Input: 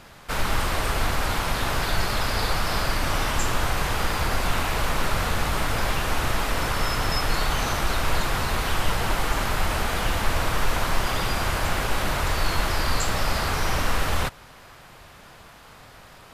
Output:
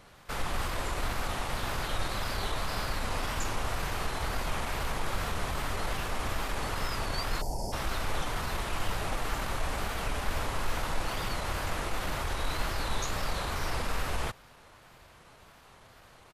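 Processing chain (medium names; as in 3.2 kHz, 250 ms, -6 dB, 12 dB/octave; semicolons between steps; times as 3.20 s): pitch shift -1.5 st; wow and flutter 140 cents; time-frequency box 7.41–7.73 s, 970–4400 Hz -29 dB; trim -8 dB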